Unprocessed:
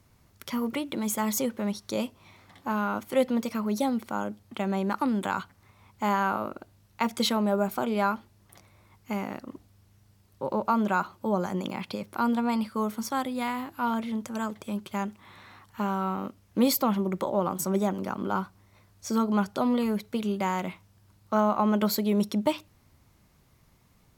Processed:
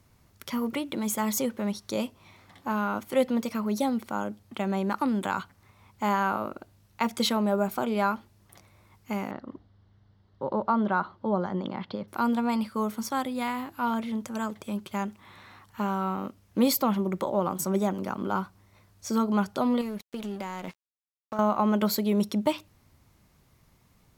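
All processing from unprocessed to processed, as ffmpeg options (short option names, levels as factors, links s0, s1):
-filter_complex "[0:a]asettb=1/sr,asplit=3[s0][s1][s2];[s0]atrim=end=9.314[s3];[s1]atrim=start=9.31:end=12.08,asetpts=PTS-STARTPTS,afade=t=in:d=0.004:c=qsin,afade=t=out:st=2.766:d=0.004:c=qsin,lowpass=f=3900:w=0.5412,lowpass=f=3900:w=1.3066,equalizer=f=2500:w=4.9:g=-14.5[s4];[s2]atrim=start=12.076[s5];[s3][s4]acrossfade=d=0.004:c1=hsin:c2=qsin[s6];[s6][s5]acrossfade=d=0.004:c1=qsin:c2=hsin,asettb=1/sr,asplit=3[s7][s8][s9];[s7]atrim=end=19.814[s10];[s8]atrim=start=19.81:end=21.39,asetpts=PTS-STARTPTS,afade=t=in:d=0.004:c=qsin,afade=t=out:st=1.576:d=0.004:c=qsin,aeval=exprs='sgn(val(0))*max(abs(val(0))-0.00841,0)':c=same,acompressor=threshold=0.0316:ratio=5:attack=3.2:release=140:knee=1:detection=peak[s11];[s9]atrim=start=21.386[s12];[s10][s11]acrossfade=d=0.004:c1=hsin:c2=qsin[s13];[s13][s12]acrossfade=d=0.004:c1=qsin:c2=hsin"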